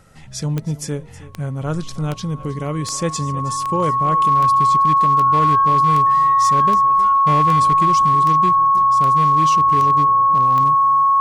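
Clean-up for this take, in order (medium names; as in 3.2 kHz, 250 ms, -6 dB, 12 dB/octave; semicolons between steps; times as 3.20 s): clip repair -9.5 dBFS; de-click; band-stop 1.1 kHz, Q 30; inverse comb 318 ms -18 dB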